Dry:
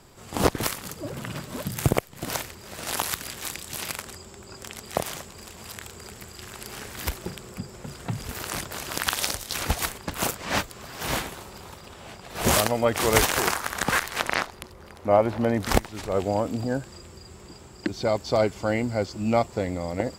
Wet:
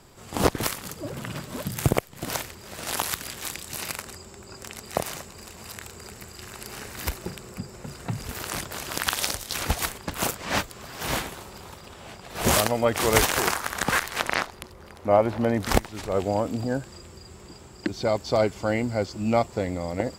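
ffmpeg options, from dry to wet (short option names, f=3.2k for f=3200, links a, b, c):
-filter_complex "[0:a]asettb=1/sr,asplit=3[a][b][c];[a]atrim=end=3.664[d];[b]atrim=start=3.66:end=8.27,asetpts=PTS-STARTPTS,afade=t=in:d=0.004:c=qsin,afade=t=out:st=4.606:d=0.004:c=qsin,bandreject=f=3.3k:w=12[e];[c]atrim=start=8.266[f];[d][e]acrossfade=d=0.004:c1=hsin:c2=qsin[g];[g][f]acrossfade=d=0.004:c1=qsin:c2=hsin"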